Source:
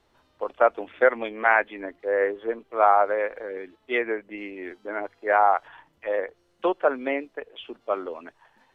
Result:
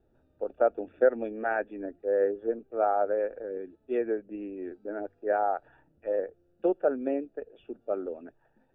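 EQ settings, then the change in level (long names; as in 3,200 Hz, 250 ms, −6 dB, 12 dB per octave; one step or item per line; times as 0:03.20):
moving average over 42 samples
+1.5 dB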